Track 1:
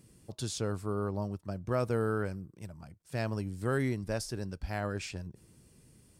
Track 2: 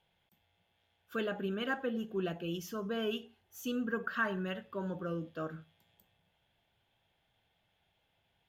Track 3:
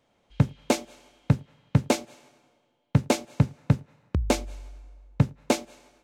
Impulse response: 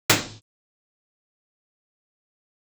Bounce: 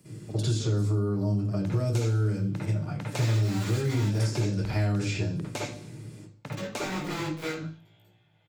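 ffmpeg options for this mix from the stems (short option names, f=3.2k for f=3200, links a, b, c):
-filter_complex "[0:a]highpass=42,acrossover=split=390|3000[a][b][c];[b]acompressor=threshold=-43dB:ratio=6[d];[a][d][c]amix=inputs=3:normalize=0,alimiter=level_in=4.5dB:limit=-24dB:level=0:latency=1,volume=-4.5dB,volume=1dB,asplit=2[e][f];[f]volume=-10.5dB[g];[1:a]aeval=exprs='(mod(47.3*val(0)+1,2)-1)/47.3':c=same,flanger=delay=17:depth=3.6:speed=0.51,adelay=2000,volume=-5dB,asplit=3[h][i][j];[h]atrim=end=4.19,asetpts=PTS-STARTPTS,afade=t=out:st=4.186:d=0.004:c=hsin[k];[i]atrim=start=4.19:end=6.52,asetpts=PTS-STARTPTS,volume=0[l];[j]atrim=start=6.52,asetpts=PTS-STARTPTS,afade=t=in:d=0.004:c=hsin[m];[k][l][m]concat=n=3:v=0:a=1,asplit=2[n][o];[o]volume=-8dB[p];[2:a]highpass=f=1.2k:p=1,adelay=1250,volume=-6dB,asplit=2[q][r];[r]volume=-20dB[s];[3:a]atrim=start_sample=2205[t];[g][p][s]amix=inputs=3:normalize=0[u];[u][t]afir=irnorm=-1:irlink=0[v];[e][n][q][v]amix=inputs=4:normalize=0,bandreject=f=50:t=h:w=6,bandreject=f=100:t=h:w=6,acrossover=split=120|3600[w][x][y];[w]acompressor=threshold=-31dB:ratio=4[z];[x]acompressor=threshold=-29dB:ratio=4[aa];[y]acompressor=threshold=-40dB:ratio=4[ab];[z][aa][ab]amix=inputs=3:normalize=0"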